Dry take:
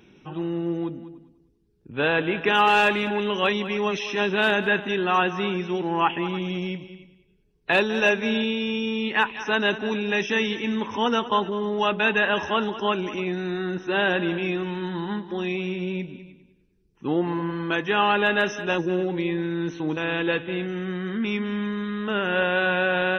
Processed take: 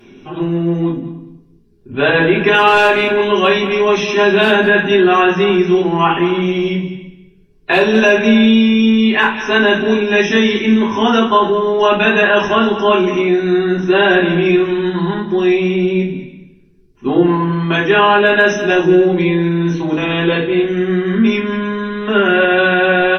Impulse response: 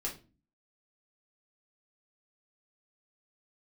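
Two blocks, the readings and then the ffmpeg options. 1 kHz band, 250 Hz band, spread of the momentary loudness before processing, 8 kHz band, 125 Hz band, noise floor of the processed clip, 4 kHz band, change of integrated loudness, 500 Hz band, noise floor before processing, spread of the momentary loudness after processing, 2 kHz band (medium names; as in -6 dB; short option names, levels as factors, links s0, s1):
+9.5 dB, +13.0 dB, 9 LU, no reading, +12.0 dB, -47 dBFS, +9.0 dB, +11.0 dB, +12.5 dB, -62 dBFS, 8 LU, +9.5 dB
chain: -filter_complex "[0:a]aecho=1:1:176:0.0708[s0];[1:a]atrim=start_sample=2205,asetrate=37485,aresample=44100[s1];[s0][s1]afir=irnorm=-1:irlink=0,alimiter=level_in=2.99:limit=0.891:release=50:level=0:latency=1,volume=0.891"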